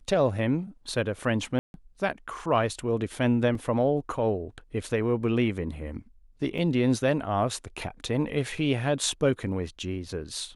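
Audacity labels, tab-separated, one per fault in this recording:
1.590000	1.740000	dropout 151 ms
3.550000	3.550000	dropout 2.7 ms
6.580000	6.580000	dropout 4.2 ms

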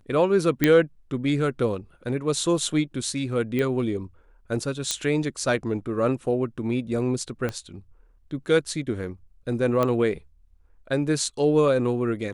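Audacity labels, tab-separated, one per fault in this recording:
0.640000	0.640000	pop -5 dBFS
3.590000	3.590000	pop -15 dBFS
4.910000	4.910000	pop -9 dBFS
7.490000	7.490000	pop -15 dBFS
9.830000	9.830000	pop -11 dBFS

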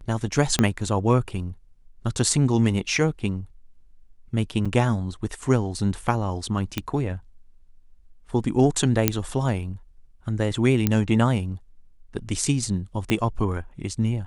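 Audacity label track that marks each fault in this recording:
0.590000	0.590000	pop -6 dBFS
4.650000	4.660000	dropout 5.6 ms
6.780000	6.780000	pop -10 dBFS
9.080000	9.080000	pop -1 dBFS
10.870000	10.870000	pop -6 dBFS
13.100000	13.100000	pop -9 dBFS

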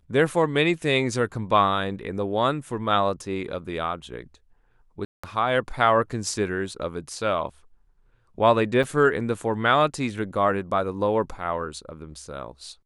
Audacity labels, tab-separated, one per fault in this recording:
5.050000	5.240000	dropout 185 ms
8.830000	8.840000	dropout 6.6 ms

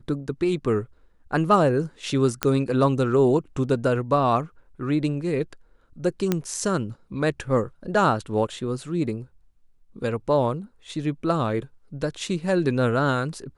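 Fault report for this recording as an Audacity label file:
2.430000	2.430000	pop -5 dBFS
6.320000	6.320000	pop -8 dBFS

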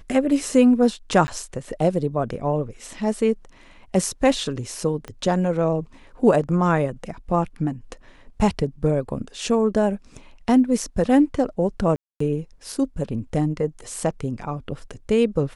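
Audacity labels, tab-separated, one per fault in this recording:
1.270000	1.280000	dropout 10 ms
5.080000	5.080000	pop -20 dBFS
11.960000	12.200000	dropout 244 ms

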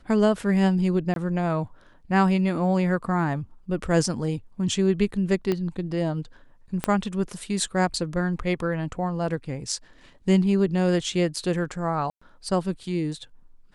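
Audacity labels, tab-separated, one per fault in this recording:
1.140000	1.160000	dropout 22 ms
5.520000	5.520000	pop -13 dBFS
6.840000	6.840000	pop -10 dBFS
12.100000	12.210000	dropout 115 ms

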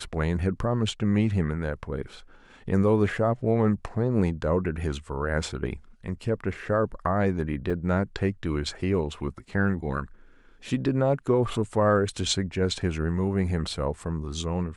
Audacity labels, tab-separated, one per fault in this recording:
7.700000	7.700000	dropout 4.5 ms

